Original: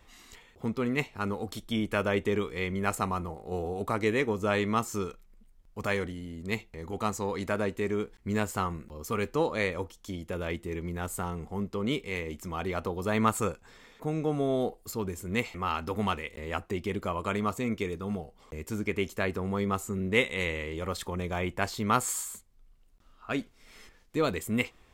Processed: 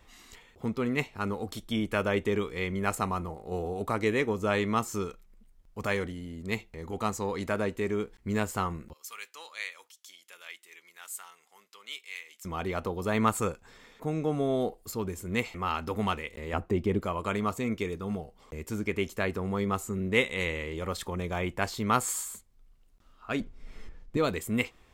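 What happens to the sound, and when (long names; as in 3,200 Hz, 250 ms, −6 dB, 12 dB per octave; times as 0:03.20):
0:08.93–0:12.45: Bessel high-pass filter 2,700 Hz
0:16.53–0:17.01: tilt shelving filter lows +6 dB, about 1,200 Hz
0:23.40–0:24.17: spectral tilt −3 dB per octave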